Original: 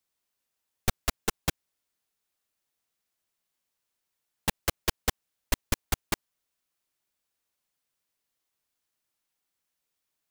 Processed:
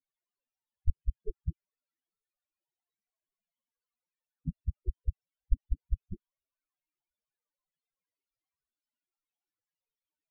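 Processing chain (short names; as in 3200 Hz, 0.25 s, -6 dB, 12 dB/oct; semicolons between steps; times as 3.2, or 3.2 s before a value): half-waves squared off; loudest bins only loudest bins 4; gain -2.5 dB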